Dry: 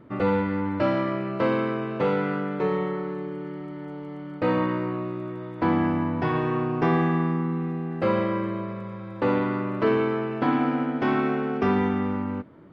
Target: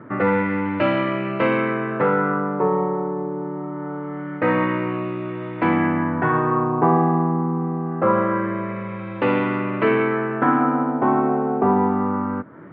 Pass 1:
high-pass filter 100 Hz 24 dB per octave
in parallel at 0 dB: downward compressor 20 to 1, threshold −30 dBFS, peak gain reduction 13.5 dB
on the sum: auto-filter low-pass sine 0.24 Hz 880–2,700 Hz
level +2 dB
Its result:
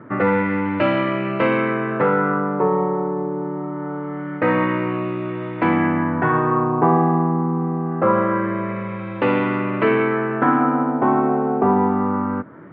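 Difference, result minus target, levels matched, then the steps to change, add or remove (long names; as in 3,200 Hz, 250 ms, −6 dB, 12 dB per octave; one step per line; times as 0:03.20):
downward compressor: peak gain reduction −7 dB
change: downward compressor 20 to 1, threshold −37.5 dBFS, peak gain reduction 20.5 dB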